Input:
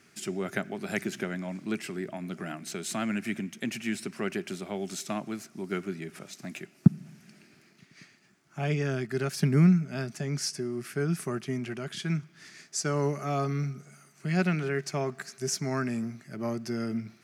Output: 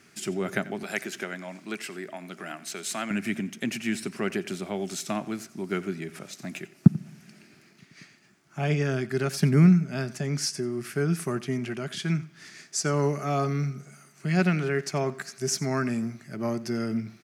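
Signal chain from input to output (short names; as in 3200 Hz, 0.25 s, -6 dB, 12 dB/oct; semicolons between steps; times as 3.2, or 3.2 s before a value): 0.83–3.11 HPF 580 Hz 6 dB/oct; echo 89 ms -18.5 dB; gain +3 dB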